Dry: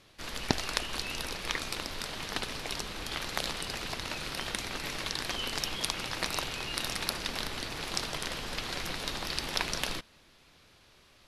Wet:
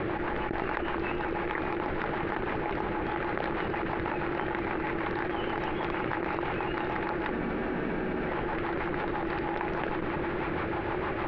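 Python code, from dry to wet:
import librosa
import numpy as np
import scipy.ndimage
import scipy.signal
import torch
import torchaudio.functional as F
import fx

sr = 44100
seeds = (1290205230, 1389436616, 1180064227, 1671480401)

p1 = scipy.signal.sosfilt(scipy.signal.butter(4, 1900.0, 'lowpass', fs=sr, output='sos'), x)
p2 = fx.low_shelf(p1, sr, hz=86.0, db=-9.0)
p3 = fx.small_body(p2, sr, hz=(340.0, 840.0), ring_ms=55, db=12)
p4 = p3 + fx.echo_single(p3, sr, ms=112, db=-17.0, dry=0)
p5 = fx.rotary(p4, sr, hz=6.3)
p6 = fx.peak_eq(p5, sr, hz=270.0, db=-5.5, octaves=0.39)
p7 = fx.spec_freeze(p6, sr, seeds[0], at_s=7.33, hold_s=0.94)
p8 = fx.env_flatten(p7, sr, amount_pct=100)
y = p8 * 10.0 ** (-5.0 / 20.0)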